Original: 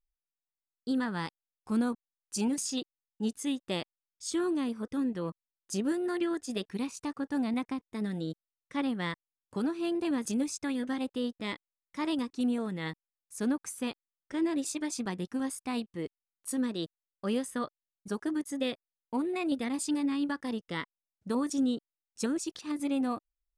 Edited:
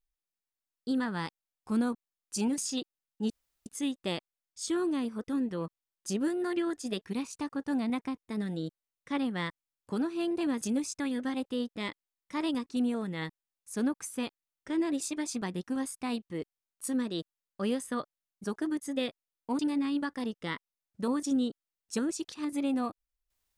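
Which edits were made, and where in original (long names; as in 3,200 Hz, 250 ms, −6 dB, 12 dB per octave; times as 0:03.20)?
0:03.30: splice in room tone 0.36 s
0:19.23–0:19.86: remove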